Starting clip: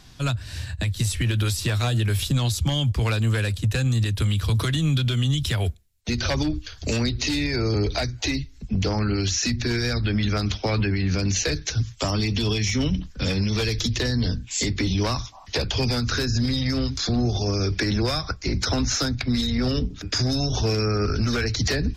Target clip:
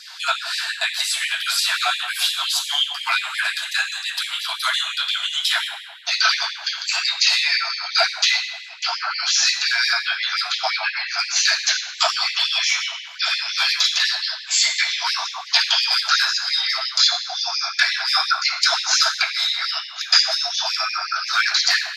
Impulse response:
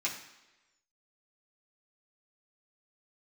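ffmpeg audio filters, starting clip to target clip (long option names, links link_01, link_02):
-filter_complex "[0:a]acompressor=threshold=-26dB:ratio=6[link_01];[1:a]atrim=start_sample=2205,asetrate=27342,aresample=44100[link_02];[link_01][link_02]afir=irnorm=-1:irlink=0,afftfilt=real='re*gte(b*sr/1024,610*pow(1800/610,0.5+0.5*sin(2*PI*5.7*pts/sr)))':imag='im*gte(b*sr/1024,610*pow(1800/610,0.5+0.5*sin(2*PI*5.7*pts/sr)))':win_size=1024:overlap=0.75,volume=7.5dB"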